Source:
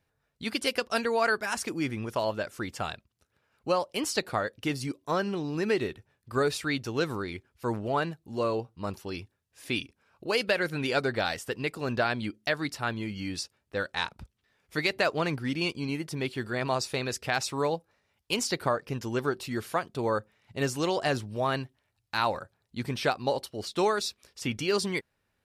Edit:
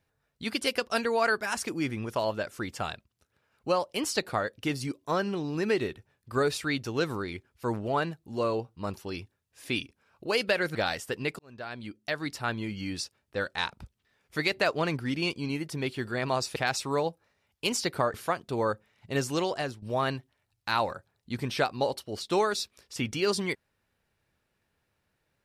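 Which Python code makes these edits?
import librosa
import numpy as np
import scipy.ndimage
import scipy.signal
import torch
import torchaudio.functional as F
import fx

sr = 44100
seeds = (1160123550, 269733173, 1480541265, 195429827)

y = fx.edit(x, sr, fx.cut(start_s=10.75, length_s=0.39),
    fx.fade_in_span(start_s=11.78, length_s=1.08),
    fx.cut(start_s=16.95, length_s=0.28),
    fx.cut(start_s=18.81, length_s=0.79),
    fx.fade_out_to(start_s=20.84, length_s=0.44, floor_db=-12.5), tone=tone)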